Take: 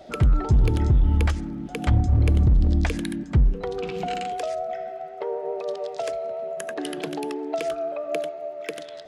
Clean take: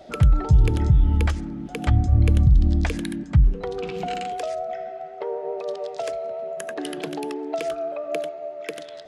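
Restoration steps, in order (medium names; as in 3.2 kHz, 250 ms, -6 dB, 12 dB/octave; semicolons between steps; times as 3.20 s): clip repair -13 dBFS; de-click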